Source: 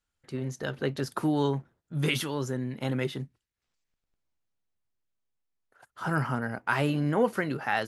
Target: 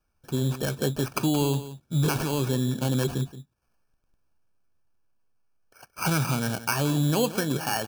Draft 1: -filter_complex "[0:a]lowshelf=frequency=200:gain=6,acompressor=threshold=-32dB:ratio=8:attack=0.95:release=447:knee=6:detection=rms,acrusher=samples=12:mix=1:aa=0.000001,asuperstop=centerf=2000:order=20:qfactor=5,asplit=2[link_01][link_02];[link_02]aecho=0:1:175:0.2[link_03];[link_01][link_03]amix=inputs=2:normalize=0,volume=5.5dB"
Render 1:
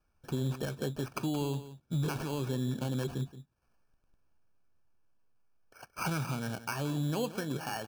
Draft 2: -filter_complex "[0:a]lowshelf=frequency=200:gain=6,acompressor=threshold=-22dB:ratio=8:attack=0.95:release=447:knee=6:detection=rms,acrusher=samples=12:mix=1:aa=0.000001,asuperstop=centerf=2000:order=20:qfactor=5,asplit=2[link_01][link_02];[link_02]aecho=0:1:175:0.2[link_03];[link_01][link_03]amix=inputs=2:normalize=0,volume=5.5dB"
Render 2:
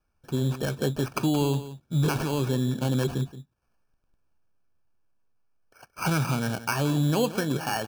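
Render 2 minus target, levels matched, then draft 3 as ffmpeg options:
8,000 Hz band −3.5 dB
-filter_complex "[0:a]lowshelf=frequency=200:gain=6,acompressor=threshold=-22dB:ratio=8:attack=0.95:release=447:knee=6:detection=rms,acrusher=samples=12:mix=1:aa=0.000001,asuperstop=centerf=2000:order=20:qfactor=5,highshelf=frequency=5200:gain=6,asplit=2[link_01][link_02];[link_02]aecho=0:1:175:0.2[link_03];[link_01][link_03]amix=inputs=2:normalize=0,volume=5.5dB"

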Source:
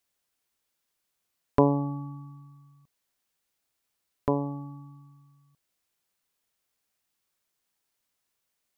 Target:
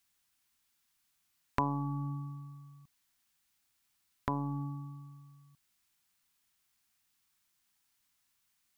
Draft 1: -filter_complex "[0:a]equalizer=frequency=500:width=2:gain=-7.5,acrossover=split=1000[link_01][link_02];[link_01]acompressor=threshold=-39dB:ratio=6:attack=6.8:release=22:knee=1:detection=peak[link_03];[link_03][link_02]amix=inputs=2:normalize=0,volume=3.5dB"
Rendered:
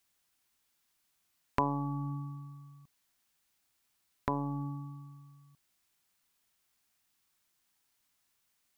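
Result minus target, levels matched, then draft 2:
500 Hz band +3.5 dB
-filter_complex "[0:a]equalizer=frequency=500:width=2:gain=-17.5,acrossover=split=1000[link_01][link_02];[link_01]acompressor=threshold=-39dB:ratio=6:attack=6.8:release=22:knee=1:detection=peak[link_03];[link_03][link_02]amix=inputs=2:normalize=0,volume=3.5dB"

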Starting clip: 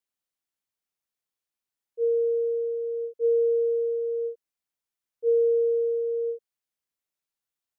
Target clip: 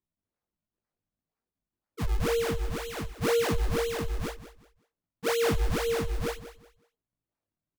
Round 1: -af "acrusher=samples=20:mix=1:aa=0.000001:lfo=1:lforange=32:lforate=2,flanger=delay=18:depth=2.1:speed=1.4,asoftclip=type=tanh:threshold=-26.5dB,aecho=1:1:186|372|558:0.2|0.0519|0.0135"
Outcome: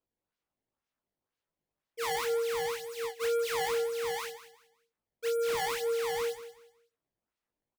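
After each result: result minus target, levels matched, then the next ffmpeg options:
soft clipping: distortion +13 dB; sample-and-hold swept by an LFO: distortion −12 dB
-af "acrusher=samples=20:mix=1:aa=0.000001:lfo=1:lforange=32:lforate=2,flanger=delay=18:depth=2.1:speed=1.4,asoftclip=type=tanh:threshold=-17dB,aecho=1:1:186|372|558:0.2|0.0519|0.0135"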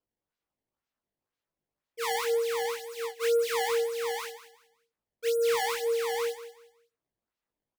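sample-and-hold swept by an LFO: distortion −12 dB
-af "acrusher=samples=60:mix=1:aa=0.000001:lfo=1:lforange=96:lforate=2,flanger=delay=18:depth=2.1:speed=1.4,asoftclip=type=tanh:threshold=-17dB,aecho=1:1:186|372|558:0.2|0.0519|0.0135"

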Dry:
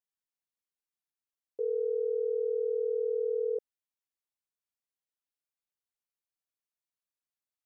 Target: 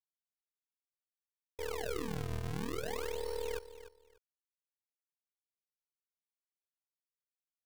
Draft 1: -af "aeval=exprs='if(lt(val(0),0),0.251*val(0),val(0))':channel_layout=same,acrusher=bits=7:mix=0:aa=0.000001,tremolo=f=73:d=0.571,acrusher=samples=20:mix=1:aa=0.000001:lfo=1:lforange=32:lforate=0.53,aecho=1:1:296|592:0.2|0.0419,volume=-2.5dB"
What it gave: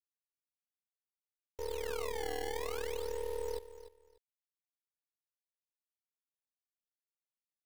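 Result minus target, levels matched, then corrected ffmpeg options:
sample-and-hold swept by an LFO: distortion −7 dB
-af "aeval=exprs='if(lt(val(0),0),0.251*val(0),val(0))':channel_layout=same,acrusher=bits=7:mix=0:aa=0.000001,tremolo=f=73:d=0.571,acrusher=samples=44:mix=1:aa=0.000001:lfo=1:lforange=70.4:lforate=0.53,aecho=1:1:296|592:0.2|0.0419,volume=-2.5dB"

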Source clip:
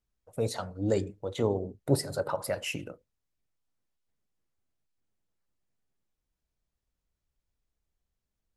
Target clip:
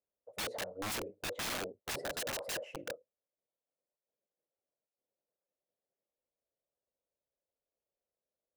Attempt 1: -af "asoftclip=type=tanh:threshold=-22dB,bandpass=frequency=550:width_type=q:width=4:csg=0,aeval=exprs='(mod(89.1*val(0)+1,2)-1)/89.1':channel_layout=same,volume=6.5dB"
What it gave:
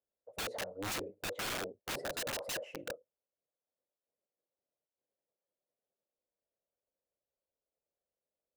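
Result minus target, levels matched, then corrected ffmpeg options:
soft clipping: distortion +10 dB
-af "asoftclip=type=tanh:threshold=-13.5dB,bandpass=frequency=550:width_type=q:width=4:csg=0,aeval=exprs='(mod(89.1*val(0)+1,2)-1)/89.1':channel_layout=same,volume=6.5dB"

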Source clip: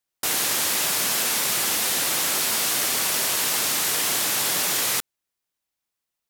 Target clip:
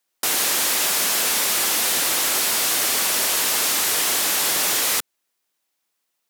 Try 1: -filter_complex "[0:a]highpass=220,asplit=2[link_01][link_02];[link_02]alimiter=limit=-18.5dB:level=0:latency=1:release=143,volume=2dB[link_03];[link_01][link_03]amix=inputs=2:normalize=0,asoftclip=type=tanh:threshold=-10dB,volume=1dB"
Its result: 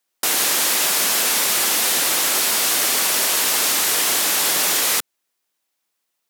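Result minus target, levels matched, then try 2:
soft clipping: distortion −9 dB
-filter_complex "[0:a]highpass=220,asplit=2[link_01][link_02];[link_02]alimiter=limit=-18.5dB:level=0:latency=1:release=143,volume=2dB[link_03];[link_01][link_03]amix=inputs=2:normalize=0,asoftclip=type=tanh:threshold=-16.5dB,volume=1dB"

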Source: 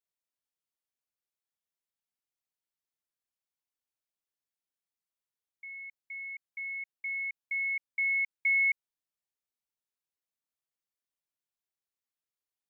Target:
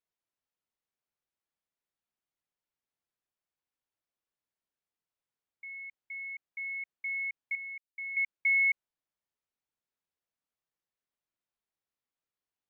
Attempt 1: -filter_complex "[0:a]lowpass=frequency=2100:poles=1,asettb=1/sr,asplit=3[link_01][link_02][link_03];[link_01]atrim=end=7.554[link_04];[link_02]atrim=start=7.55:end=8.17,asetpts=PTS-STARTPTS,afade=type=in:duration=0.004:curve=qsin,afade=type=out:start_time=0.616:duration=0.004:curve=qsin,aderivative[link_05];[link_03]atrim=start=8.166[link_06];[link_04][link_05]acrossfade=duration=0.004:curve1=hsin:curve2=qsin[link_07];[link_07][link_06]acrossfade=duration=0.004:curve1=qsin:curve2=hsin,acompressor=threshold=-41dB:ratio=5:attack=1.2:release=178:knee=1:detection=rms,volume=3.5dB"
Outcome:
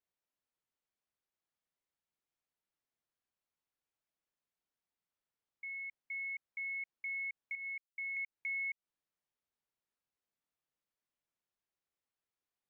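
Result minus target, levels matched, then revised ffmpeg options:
downward compressor: peak gain reduction +12.5 dB
-filter_complex "[0:a]lowpass=frequency=2100:poles=1,asettb=1/sr,asplit=3[link_01][link_02][link_03];[link_01]atrim=end=7.554[link_04];[link_02]atrim=start=7.55:end=8.17,asetpts=PTS-STARTPTS,afade=type=in:duration=0.004:curve=qsin,afade=type=out:start_time=0.616:duration=0.004:curve=qsin,aderivative[link_05];[link_03]atrim=start=8.166[link_06];[link_04][link_05]acrossfade=duration=0.004:curve1=hsin:curve2=qsin[link_07];[link_07][link_06]acrossfade=duration=0.004:curve1=qsin:curve2=hsin,volume=3.5dB"

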